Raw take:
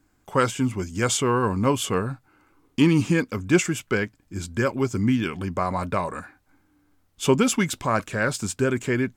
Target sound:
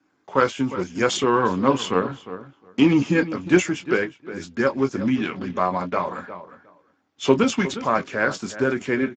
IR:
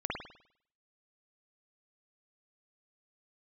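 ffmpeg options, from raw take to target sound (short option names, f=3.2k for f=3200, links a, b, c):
-filter_complex "[0:a]adynamicequalizer=threshold=0.0141:dfrequency=400:dqfactor=5.6:tfrequency=400:tqfactor=5.6:attack=5:release=100:ratio=0.375:range=2.5:mode=cutabove:tftype=bell,asplit=3[a][b][c];[a]afade=t=out:st=0.77:d=0.02[d];[b]aeval=exprs='0.447*(cos(1*acos(clip(val(0)/0.447,-1,1)))-cos(1*PI/2))+0.00398*(cos(2*acos(clip(val(0)/0.447,-1,1)))-cos(2*PI/2))+0.0282*(cos(5*acos(clip(val(0)/0.447,-1,1)))-cos(5*PI/2))+0.0126*(cos(7*acos(clip(val(0)/0.447,-1,1)))-cos(7*PI/2))':c=same,afade=t=in:st=0.77:d=0.02,afade=t=out:st=3.2:d=0.02[e];[c]afade=t=in:st=3.2:d=0.02[f];[d][e][f]amix=inputs=3:normalize=0,highpass=220,lowpass=5.1k,asplit=2[g][h];[h]adelay=22,volume=-8dB[i];[g][i]amix=inputs=2:normalize=0,asplit=2[j][k];[k]adelay=358,lowpass=f=2.3k:p=1,volume=-12.5dB,asplit=2[l][m];[m]adelay=358,lowpass=f=2.3k:p=1,volume=0.15[n];[j][l][n]amix=inputs=3:normalize=0,volume=2dB" -ar 16000 -c:a libspeex -b:a 13k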